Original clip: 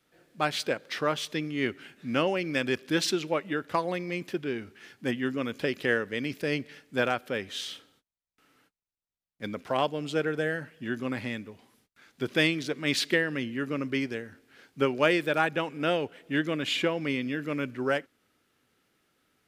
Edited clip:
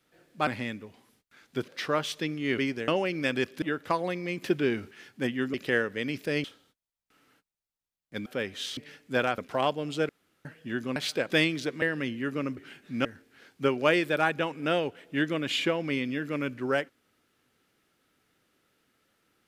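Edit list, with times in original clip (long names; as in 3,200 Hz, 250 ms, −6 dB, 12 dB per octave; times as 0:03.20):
0:00.47–0:00.81: swap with 0:11.12–0:12.33
0:01.71–0:02.19: swap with 0:13.92–0:14.22
0:02.93–0:03.46: remove
0:04.26–0:04.75: clip gain +5.5 dB
0:05.38–0:05.70: remove
0:06.60–0:07.21: swap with 0:07.72–0:09.54
0:10.25–0:10.61: fill with room tone
0:12.85–0:13.17: remove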